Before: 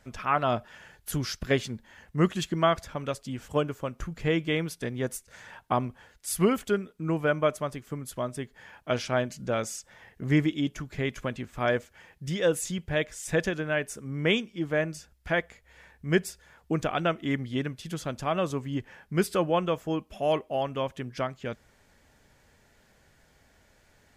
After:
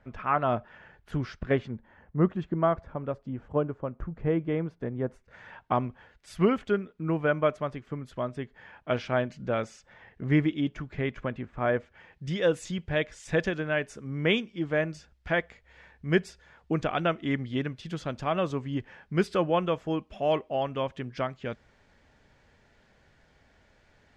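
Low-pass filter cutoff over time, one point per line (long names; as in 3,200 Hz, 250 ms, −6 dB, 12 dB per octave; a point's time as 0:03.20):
0:01.35 2,000 Hz
0:02.19 1,100 Hz
0:05.06 1,100 Hz
0:05.49 2,900 Hz
0:10.87 2,900 Hz
0:11.64 1,700 Hz
0:12.26 4,400 Hz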